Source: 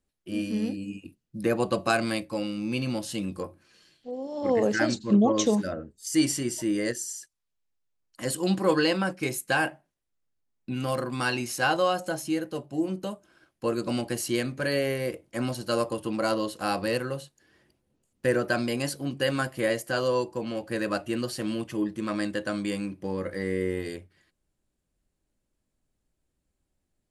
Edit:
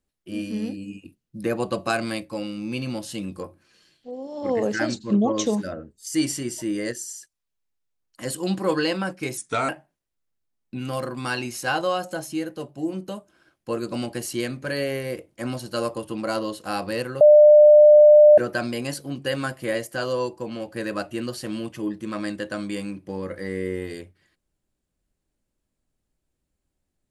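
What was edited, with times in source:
9.37–9.64 speed 85%
17.16–18.33 bleep 599 Hz -7.5 dBFS

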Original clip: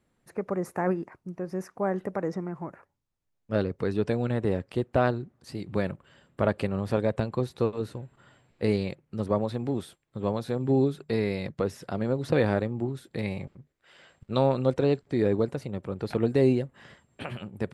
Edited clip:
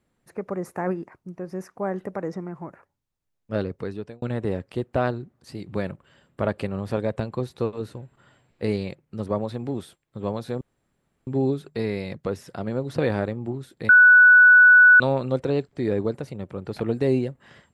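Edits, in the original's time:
3.71–4.22 fade out
10.61 insert room tone 0.66 s
13.23–14.34 bleep 1480 Hz -8.5 dBFS

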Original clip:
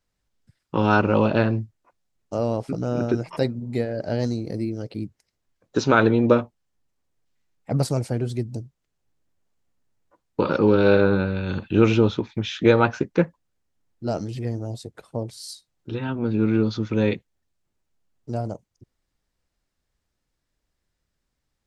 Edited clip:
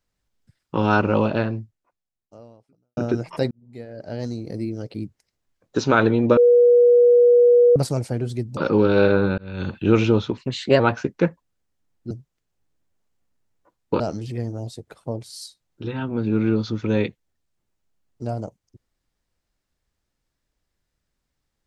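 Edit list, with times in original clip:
1.15–2.97 fade out quadratic
3.51–4.74 fade in linear
6.37–7.76 bleep 483 Hz -10 dBFS
8.57–10.46 move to 14.07
11.27–11.52 fade in
12.26–12.76 speed 117%

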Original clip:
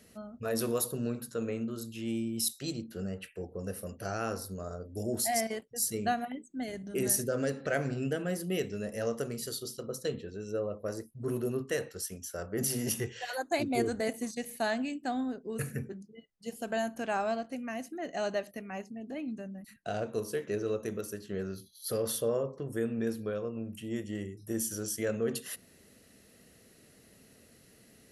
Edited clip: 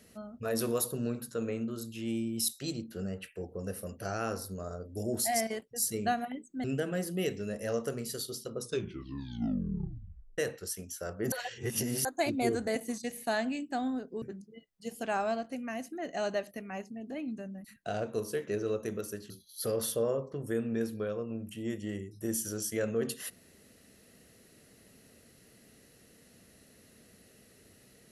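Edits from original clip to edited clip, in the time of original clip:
6.64–7.97 cut
9.88 tape stop 1.83 s
12.65–13.38 reverse
15.55–15.83 cut
16.64–17.03 cut
21.3–21.56 cut

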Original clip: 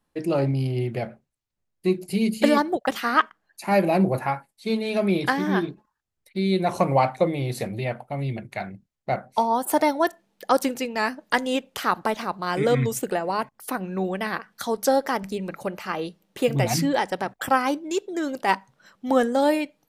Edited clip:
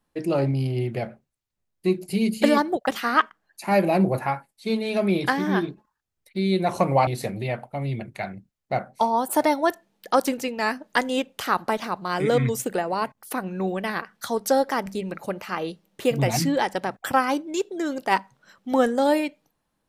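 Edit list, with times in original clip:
7.07–7.44 cut

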